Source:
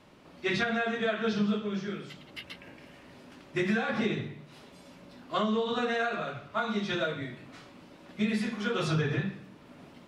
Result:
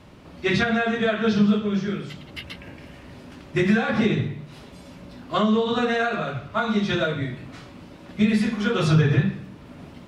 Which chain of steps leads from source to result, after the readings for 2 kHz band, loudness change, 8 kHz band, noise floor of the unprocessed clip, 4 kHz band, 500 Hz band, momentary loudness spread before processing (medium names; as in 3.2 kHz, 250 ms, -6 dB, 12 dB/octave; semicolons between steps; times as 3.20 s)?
+6.0 dB, +8.0 dB, no reading, -53 dBFS, +6.0 dB, +7.0 dB, 17 LU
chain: peaking EQ 61 Hz +12.5 dB 2.4 oct; trim +6 dB